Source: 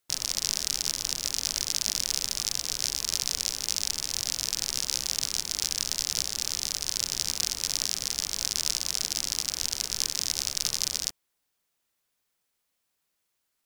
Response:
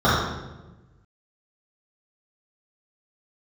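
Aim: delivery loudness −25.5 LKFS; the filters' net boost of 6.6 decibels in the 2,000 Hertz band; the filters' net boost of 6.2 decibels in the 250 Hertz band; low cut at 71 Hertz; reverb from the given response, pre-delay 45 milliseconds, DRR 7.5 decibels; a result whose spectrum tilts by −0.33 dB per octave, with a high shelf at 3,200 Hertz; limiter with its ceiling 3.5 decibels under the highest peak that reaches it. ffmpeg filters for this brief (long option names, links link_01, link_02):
-filter_complex "[0:a]highpass=71,equalizer=frequency=250:width_type=o:gain=8,equalizer=frequency=2000:width_type=o:gain=6.5,highshelf=frequency=3200:gain=4.5,alimiter=limit=-4dB:level=0:latency=1,asplit=2[link_01][link_02];[1:a]atrim=start_sample=2205,adelay=45[link_03];[link_02][link_03]afir=irnorm=-1:irlink=0,volume=-31dB[link_04];[link_01][link_04]amix=inputs=2:normalize=0,volume=-1dB"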